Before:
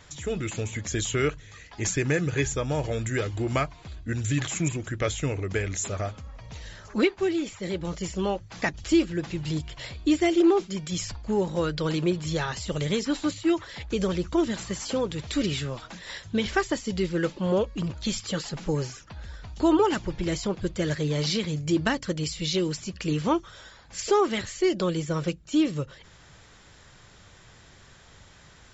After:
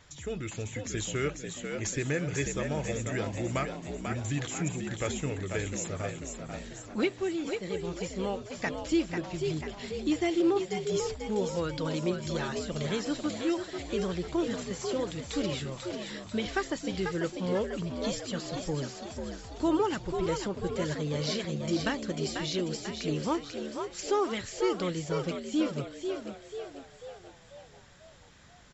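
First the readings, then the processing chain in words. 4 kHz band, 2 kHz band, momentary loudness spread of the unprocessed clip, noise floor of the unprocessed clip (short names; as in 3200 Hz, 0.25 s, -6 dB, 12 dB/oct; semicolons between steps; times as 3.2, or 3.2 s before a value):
-4.5 dB, -4.5 dB, 10 LU, -53 dBFS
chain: frequency-shifting echo 0.492 s, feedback 52%, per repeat +67 Hz, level -6 dB; gain -6 dB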